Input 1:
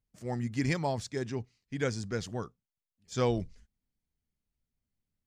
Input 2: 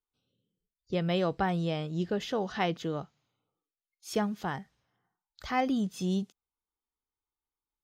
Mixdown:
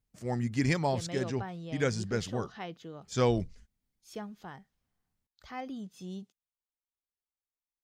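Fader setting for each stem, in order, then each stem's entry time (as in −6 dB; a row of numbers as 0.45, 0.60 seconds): +2.0, −11.5 decibels; 0.00, 0.00 seconds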